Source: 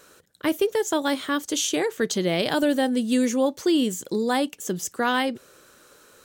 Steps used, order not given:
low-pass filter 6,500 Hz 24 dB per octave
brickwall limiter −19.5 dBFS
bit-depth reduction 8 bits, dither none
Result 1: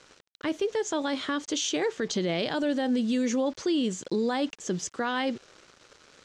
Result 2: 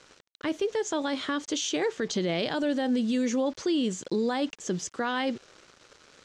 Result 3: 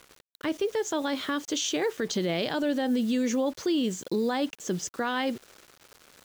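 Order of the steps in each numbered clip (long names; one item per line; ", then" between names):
bit-depth reduction, then low-pass filter, then brickwall limiter
bit-depth reduction, then brickwall limiter, then low-pass filter
low-pass filter, then bit-depth reduction, then brickwall limiter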